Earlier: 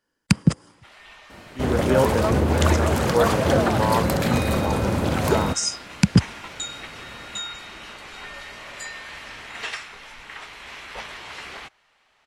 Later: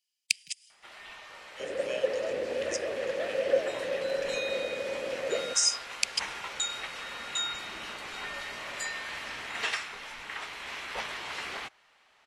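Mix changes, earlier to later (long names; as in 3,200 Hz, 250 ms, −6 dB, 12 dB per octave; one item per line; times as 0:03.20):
speech: add elliptic high-pass filter 2,400 Hz, stop band 50 dB
second sound: add formant filter e
master: add low-shelf EQ 130 Hz −9 dB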